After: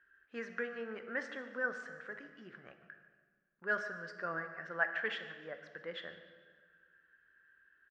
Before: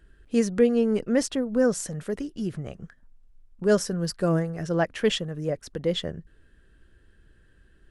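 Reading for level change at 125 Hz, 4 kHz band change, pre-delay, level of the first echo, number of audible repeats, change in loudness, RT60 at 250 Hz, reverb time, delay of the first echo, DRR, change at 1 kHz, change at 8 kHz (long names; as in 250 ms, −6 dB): −27.5 dB, −16.0 dB, 12 ms, −18.0 dB, 2, −14.0 dB, 2.0 s, 1.6 s, 146 ms, 7.0 dB, −7.5 dB, below −30 dB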